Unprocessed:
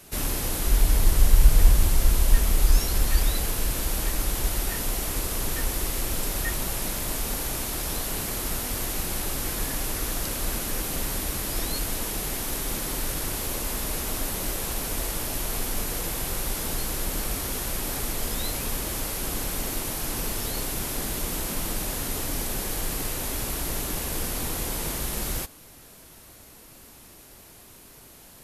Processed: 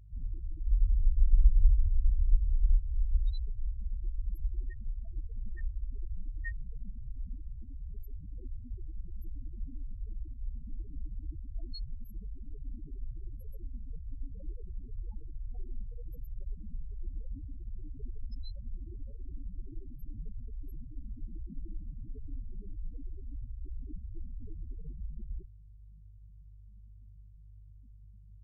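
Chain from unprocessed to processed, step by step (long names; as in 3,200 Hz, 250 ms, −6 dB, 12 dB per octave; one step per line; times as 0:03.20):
mains hum 50 Hz, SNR 21 dB
spectral peaks only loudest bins 4
level −6 dB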